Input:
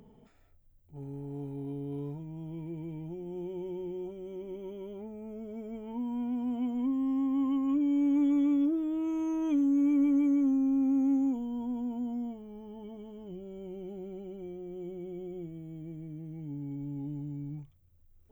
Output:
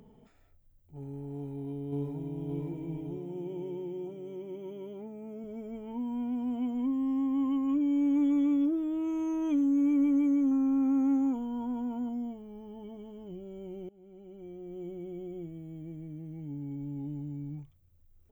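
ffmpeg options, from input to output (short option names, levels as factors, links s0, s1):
-filter_complex "[0:a]asplit=2[s0][s1];[s1]afade=t=in:st=1.35:d=0.01,afade=t=out:st=2.49:d=0.01,aecho=0:1:570|1140|1710|2280|2850|3420|3990:0.841395|0.420698|0.210349|0.105174|0.0525872|0.0262936|0.0131468[s2];[s0][s2]amix=inputs=2:normalize=0,asettb=1/sr,asplit=3[s3][s4][s5];[s3]atrim=end=3.174[s6];[s4]atrim=start=3.17:end=5.44,asetpts=PTS-STARTPTS,afade=t=in:d=0.004:c=qsin,afade=t=out:st=2.266:d=0.004:c=qsin,highpass=120[s7];[s5]atrim=start=5.436[s8];[s6][s7]acrossfade=d=0.004:c1=hsin:c2=qsin[s9];[s9][s8]acrossfade=d=0.004:c1=qsin:c2=hsin,asettb=1/sr,asplit=3[s10][s11][s12];[s10]atrim=end=10.514[s13];[s11]atrim=start=10.51:end=12.09,asetpts=PTS-STARTPTS,afade=t=in:d=0.004:c=qsin,afade=t=out:st=1.576:d=0.004:c=qsin,equalizer=f=1300:t=o:w=0.98:g=11.5[s14];[s12]atrim=start=12.086[s15];[s13][s14]acrossfade=d=0.004:c1=hsin:c2=qsin[s16];[s16][s15]acrossfade=d=0.004:c1=qsin:c2=hsin,asplit=2[s17][s18];[s17]atrim=end=13.89,asetpts=PTS-STARTPTS,afade=t=out:st=13.886:d=0.004:c=hsin:silence=0.0749894[s19];[s18]atrim=start=13.89,asetpts=PTS-STARTPTS,afade=t=in:d=0.91:silence=0.0749894[s20];[s19][s20]concat=n=2:v=0:a=1"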